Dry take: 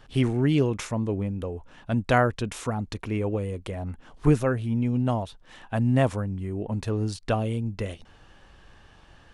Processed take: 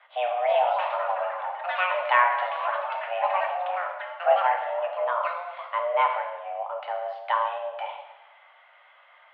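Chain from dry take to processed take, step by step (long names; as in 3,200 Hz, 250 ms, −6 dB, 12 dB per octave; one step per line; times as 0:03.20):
delay with pitch and tempo change per echo 374 ms, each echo +7 semitones, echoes 3, each echo −6 dB
coupled-rooms reverb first 0.99 s, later 3 s, from −27 dB, DRR 1.5 dB
single-sideband voice off tune +360 Hz 240–2,700 Hz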